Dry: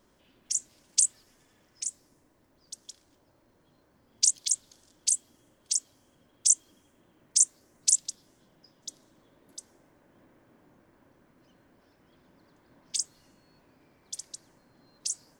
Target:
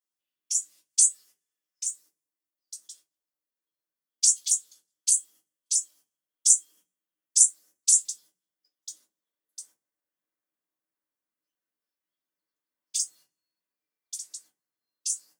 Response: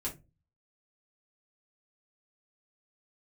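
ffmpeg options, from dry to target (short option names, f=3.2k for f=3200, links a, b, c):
-filter_complex "[0:a]agate=range=-21dB:threshold=-54dB:ratio=16:detection=peak,aderivative[a];[1:a]atrim=start_sample=2205,asetrate=52920,aresample=44100[b];[a][b]afir=irnorm=-1:irlink=0,volume=5.5dB"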